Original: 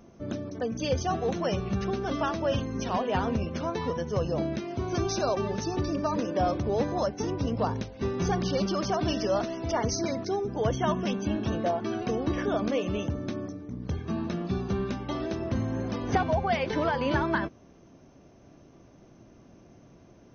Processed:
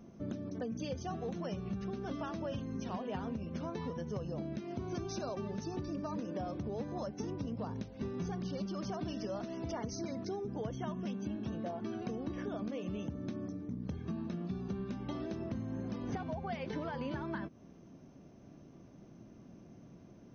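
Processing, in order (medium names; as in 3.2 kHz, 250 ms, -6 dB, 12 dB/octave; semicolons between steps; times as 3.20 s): peaking EQ 190 Hz +8 dB 1.4 oct; compression 6:1, threshold -30 dBFS, peak gain reduction 12.5 dB; trim -6 dB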